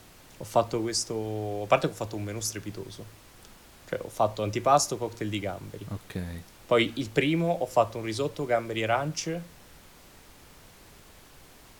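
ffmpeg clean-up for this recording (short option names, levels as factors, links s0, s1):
-af "afftdn=nr=21:nf=-53"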